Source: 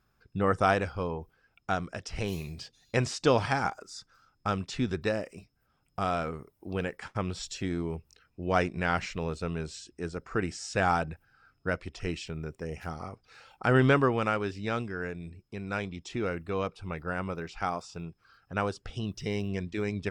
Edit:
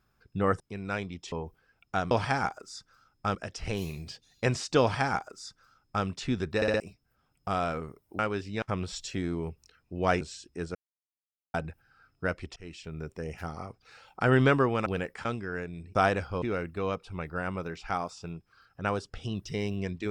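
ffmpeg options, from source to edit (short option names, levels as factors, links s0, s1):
-filter_complex "[0:a]asplit=19[s0][s1][s2][s3][s4][s5][s6][s7][s8][s9][s10][s11][s12][s13][s14][s15][s16][s17][s18];[s0]atrim=end=0.602[s19];[s1]atrim=start=15.418:end=16.142[s20];[s2]atrim=start=1.068:end=1.862[s21];[s3]atrim=start=3.318:end=4.562[s22];[s4]atrim=start=1.858:end=5.132[s23];[s5]atrim=start=5.068:end=5.132[s24];[s6]atrim=start=5.068:end=5.132[s25];[s7]atrim=start=5.068:end=5.132[s26];[s8]atrim=start=5.308:end=6.702[s27];[s9]atrim=start=14.288:end=14.722[s28];[s10]atrim=start=7.088:end=8.682[s29];[s11]atrim=start=9.638:end=10.18,asetpts=PTS-STARTPTS,afade=t=out:st=0.538:d=0.004:c=hsin[s30];[s12]atrim=start=10.18:end=10.97,asetpts=PTS-STARTPTS,volume=0[s31];[s13]atrim=start=10.97:end=11.99,asetpts=PTS-STARTPTS,afade=t=in:d=0.004:c=hsin,afade=t=out:st=1.016:d=0.004:c=hsin:silence=0.0794328[s32];[s14]atrim=start=11.99:end=14.292,asetpts=PTS-STARTPTS,afade=t=in:d=0.5:silence=0.0794328[s33];[s15]atrim=start=6.698:end=7.092[s34];[s16]atrim=start=14.718:end=15.422[s35];[s17]atrim=start=0.598:end=1.072[s36];[s18]atrim=start=16.138[s37];[s19][s20]acrossfade=d=0.004:c1=hsin:c2=hsin[s38];[s38][s21]acrossfade=d=0.004:c1=hsin:c2=hsin[s39];[s39][s22]acrossfade=d=0.004:c1=hsin:c2=hsin[s40];[s40][s23]acrossfade=d=0.004:c1=hsin:c2=hsin[s41];[s41][s24]acrossfade=d=0.004:c1=hsin:c2=hsin[s42];[s42][s25]acrossfade=d=0.004:c1=hsin:c2=hsin[s43];[s43][s26]acrossfade=d=0.004:c1=hsin:c2=hsin[s44];[s44][s27]acrossfade=d=0.004:c1=hsin:c2=hsin[s45];[s45][s28]acrossfade=d=0.004:c1=hsin:c2=hsin[s46];[s46][s29]acrossfade=d=0.004:c1=hsin:c2=hsin[s47];[s30][s31][s32][s33]concat=n=4:v=0:a=1[s48];[s47][s48]acrossfade=d=0.004:c1=hsin:c2=hsin[s49];[s49][s34]acrossfade=d=0.004:c1=hsin:c2=hsin[s50];[s50][s35]acrossfade=d=0.004:c1=hsin:c2=hsin[s51];[s51][s36]acrossfade=d=0.004:c1=hsin:c2=hsin[s52];[s52][s37]acrossfade=d=0.004:c1=hsin:c2=hsin"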